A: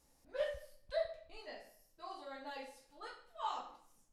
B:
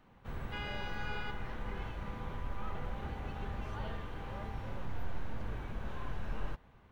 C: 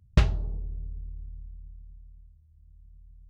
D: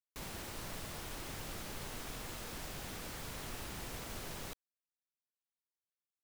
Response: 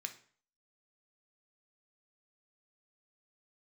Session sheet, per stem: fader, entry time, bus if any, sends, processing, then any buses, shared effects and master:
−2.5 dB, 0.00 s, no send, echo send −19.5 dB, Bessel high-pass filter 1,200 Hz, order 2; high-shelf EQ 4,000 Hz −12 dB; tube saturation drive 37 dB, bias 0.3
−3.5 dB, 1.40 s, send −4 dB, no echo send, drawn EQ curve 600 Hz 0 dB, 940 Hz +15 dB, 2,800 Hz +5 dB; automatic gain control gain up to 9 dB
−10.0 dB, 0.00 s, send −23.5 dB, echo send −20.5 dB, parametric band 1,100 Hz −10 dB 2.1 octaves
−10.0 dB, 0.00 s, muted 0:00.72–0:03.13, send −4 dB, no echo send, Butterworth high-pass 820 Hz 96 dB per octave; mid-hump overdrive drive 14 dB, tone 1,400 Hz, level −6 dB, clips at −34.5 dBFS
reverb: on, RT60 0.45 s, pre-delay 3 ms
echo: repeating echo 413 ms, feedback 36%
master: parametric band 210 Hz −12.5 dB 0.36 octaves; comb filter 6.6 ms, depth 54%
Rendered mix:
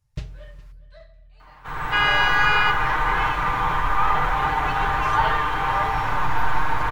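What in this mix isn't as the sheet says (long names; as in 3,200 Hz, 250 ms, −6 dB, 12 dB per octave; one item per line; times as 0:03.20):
stem B −3.5 dB → +2.5 dB
stem D −10.0 dB → −20.0 dB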